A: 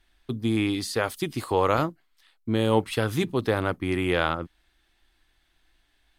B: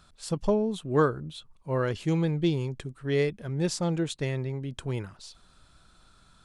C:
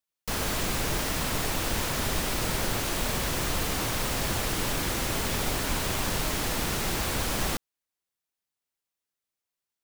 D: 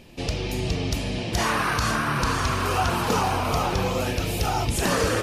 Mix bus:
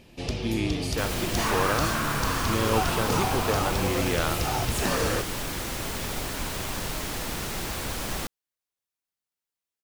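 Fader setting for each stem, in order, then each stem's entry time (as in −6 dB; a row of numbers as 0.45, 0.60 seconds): −4.5 dB, muted, −3.0 dB, −4.0 dB; 0.00 s, muted, 0.70 s, 0.00 s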